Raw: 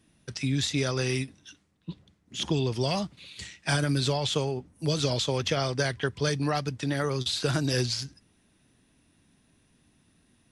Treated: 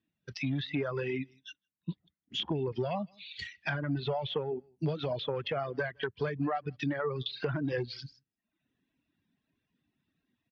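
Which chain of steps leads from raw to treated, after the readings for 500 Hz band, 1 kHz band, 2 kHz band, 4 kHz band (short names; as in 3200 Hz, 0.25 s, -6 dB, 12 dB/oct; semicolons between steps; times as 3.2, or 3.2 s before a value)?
-3.5 dB, -4.0 dB, -4.5 dB, -9.0 dB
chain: air absorption 220 m; overloaded stage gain 22.5 dB; tilt +2.5 dB/oct; on a send: echo 0.16 s -15.5 dB; on the sum: AGC gain up to 5 dB; treble ducked by the level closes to 2400 Hz, closed at -23.5 dBFS; reverb removal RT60 0.91 s; compressor 4:1, threshold -35 dBFS, peak gain reduction 11 dB; spectral expander 1.5:1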